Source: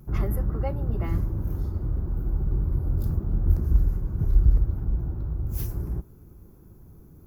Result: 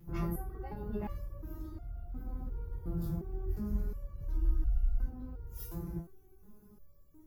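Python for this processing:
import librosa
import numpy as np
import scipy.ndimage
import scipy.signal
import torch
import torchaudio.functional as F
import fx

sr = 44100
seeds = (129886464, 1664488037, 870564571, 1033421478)

y = fx.spec_freeze(x, sr, seeds[0], at_s=4.4, hold_s=0.65)
y = fx.resonator_held(y, sr, hz=2.8, low_hz=170.0, high_hz=700.0)
y = y * 10.0 ** (7.5 / 20.0)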